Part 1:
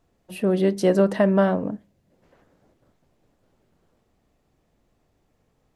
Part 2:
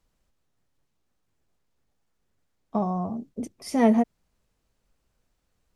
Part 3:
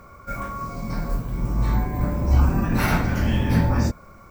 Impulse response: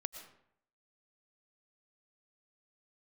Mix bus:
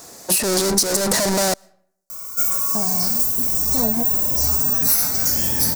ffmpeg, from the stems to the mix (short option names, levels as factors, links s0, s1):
-filter_complex "[0:a]asplit=2[s0][s1];[s1]highpass=f=720:p=1,volume=112,asoftclip=type=tanh:threshold=0.501[s2];[s0][s2]amix=inputs=2:normalize=0,lowpass=f=2600:p=1,volume=0.501,asoftclip=type=hard:threshold=0.237,volume=0.531,asplit=3[s3][s4][s5];[s3]atrim=end=1.54,asetpts=PTS-STARTPTS,afade=t=out:st=1.536:d=0.004:c=hsin[s6];[s4]atrim=start=1.54:end=2.91,asetpts=PTS-STARTPTS,volume=0[s7];[s5]atrim=start=2.91,asetpts=PTS-STARTPTS,afade=t=in:d=0.004:c=hsin[s8];[s6][s7][s8]concat=n=3:v=0:a=1,asplit=2[s9][s10];[s10]volume=0.0708[s11];[1:a]afwtdn=0.0282,volume=0.891[s12];[2:a]highpass=47,bass=f=250:g=-7,treble=f=4000:g=9,adelay=2100,volume=0.668,asplit=2[s13][s14];[s14]volume=0.355[s15];[3:a]atrim=start_sample=2205[s16];[s11][s15]amix=inputs=2:normalize=0[s17];[s17][s16]afir=irnorm=-1:irlink=0[s18];[s9][s12][s13][s18]amix=inputs=4:normalize=0,aexciter=amount=7.2:drive=8.6:freq=4500,acompressor=threshold=0.178:ratio=5"